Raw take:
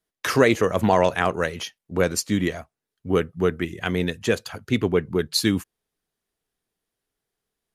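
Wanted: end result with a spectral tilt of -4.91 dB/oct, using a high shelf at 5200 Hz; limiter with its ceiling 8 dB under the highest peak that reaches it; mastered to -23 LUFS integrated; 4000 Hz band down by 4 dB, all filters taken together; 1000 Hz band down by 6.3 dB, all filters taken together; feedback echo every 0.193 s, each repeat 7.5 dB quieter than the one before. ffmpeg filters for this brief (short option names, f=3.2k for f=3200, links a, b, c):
-af "equalizer=f=1k:t=o:g=-8.5,equalizer=f=4k:t=o:g=-7,highshelf=f=5.2k:g=6,alimiter=limit=-13.5dB:level=0:latency=1,aecho=1:1:193|386|579|772|965:0.422|0.177|0.0744|0.0312|0.0131,volume=3dB"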